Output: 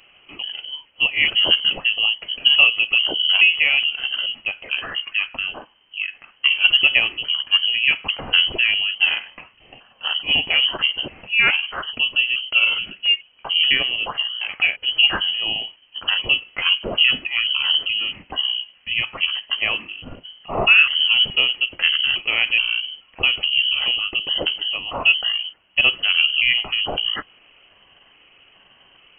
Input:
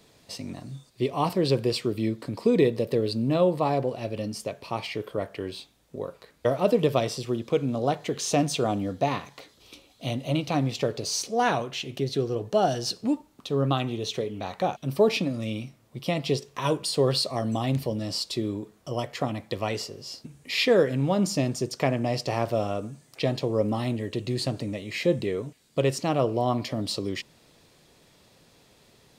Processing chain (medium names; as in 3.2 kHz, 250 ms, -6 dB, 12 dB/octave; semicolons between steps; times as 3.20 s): pitch shift switched off and on -9 st, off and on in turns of 426 ms; frequency inversion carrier 3.1 kHz; trim +7 dB